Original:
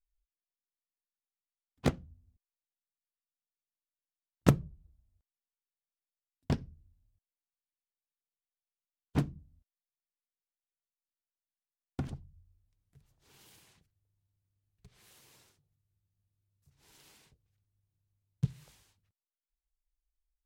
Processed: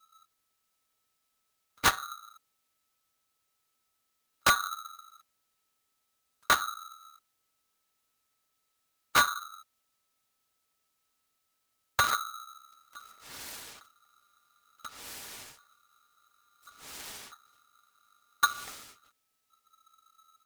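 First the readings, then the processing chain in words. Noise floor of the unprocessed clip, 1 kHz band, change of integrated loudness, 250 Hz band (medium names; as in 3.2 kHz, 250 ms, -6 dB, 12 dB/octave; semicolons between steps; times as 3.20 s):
under -85 dBFS, +17.0 dB, +4.5 dB, -13.0 dB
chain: peaking EQ 210 Hz -13 dB 1 oct; comb 5.7 ms, depth 46%; compression 3:1, threshold -34 dBFS, peak gain reduction 10.5 dB; sine folder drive 13 dB, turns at -16 dBFS; polarity switched at an audio rate 1.3 kHz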